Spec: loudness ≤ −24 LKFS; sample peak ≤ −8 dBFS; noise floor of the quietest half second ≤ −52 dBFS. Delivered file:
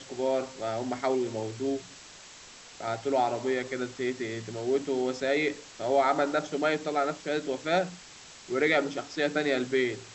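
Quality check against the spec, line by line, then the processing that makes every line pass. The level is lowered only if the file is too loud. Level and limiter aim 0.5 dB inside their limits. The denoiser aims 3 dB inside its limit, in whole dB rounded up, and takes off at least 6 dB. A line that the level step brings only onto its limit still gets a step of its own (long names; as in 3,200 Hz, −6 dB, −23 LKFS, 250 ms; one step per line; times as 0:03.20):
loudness −29.5 LKFS: in spec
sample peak −12.0 dBFS: in spec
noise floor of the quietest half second −49 dBFS: out of spec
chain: broadband denoise 6 dB, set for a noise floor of −49 dBFS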